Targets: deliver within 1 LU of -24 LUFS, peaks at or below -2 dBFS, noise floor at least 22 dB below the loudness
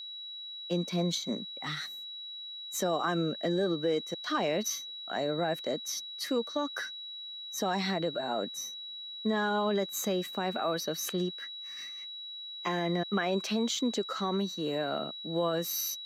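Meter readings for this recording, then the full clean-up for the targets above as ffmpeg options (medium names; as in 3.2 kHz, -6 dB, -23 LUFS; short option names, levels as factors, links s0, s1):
steady tone 3.9 kHz; tone level -40 dBFS; loudness -32.5 LUFS; peak level -18.0 dBFS; loudness target -24.0 LUFS
-> -af "bandreject=f=3900:w=30"
-af "volume=2.66"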